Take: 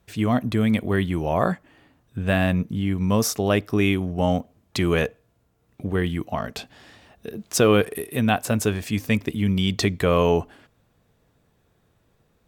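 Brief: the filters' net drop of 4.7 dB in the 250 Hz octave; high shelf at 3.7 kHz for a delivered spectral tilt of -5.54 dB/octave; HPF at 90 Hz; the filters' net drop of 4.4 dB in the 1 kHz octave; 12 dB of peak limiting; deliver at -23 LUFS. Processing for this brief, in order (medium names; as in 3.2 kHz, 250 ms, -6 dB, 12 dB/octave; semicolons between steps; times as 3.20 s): high-pass 90 Hz; peaking EQ 250 Hz -6 dB; peaking EQ 1 kHz -5 dB; treble shelf 3.7 kHz -8.5 dB; trim +9.5 dB; peak limiter -10.5 dBFS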